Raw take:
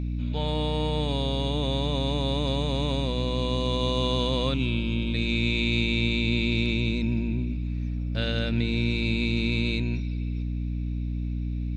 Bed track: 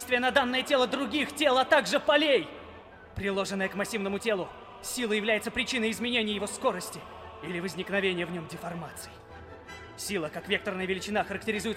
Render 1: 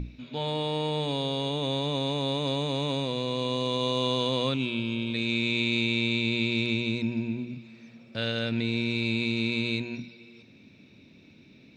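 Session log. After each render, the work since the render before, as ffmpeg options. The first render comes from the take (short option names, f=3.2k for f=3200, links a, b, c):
-af "bandreject=f=60:t=h:w=6,bandreject=f=120:t=h:w=6,bandreject=f=180:t=h:w=6,bandreject=f=240:t=h:w=6,bandreject=f=300:t=h:w=6"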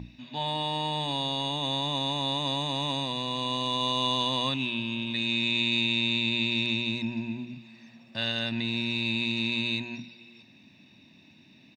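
-af "highpass=f=290:p=1,aecho=1:1:1.1:0.71"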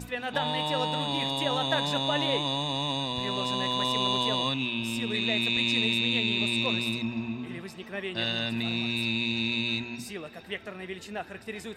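-filter_complex "[1:a]volume=-7.5dB[a];[0:a][a]amix=inputs=2:normalize=0"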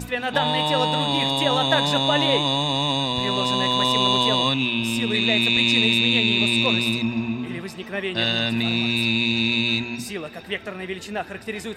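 -af "volume=7.5dB"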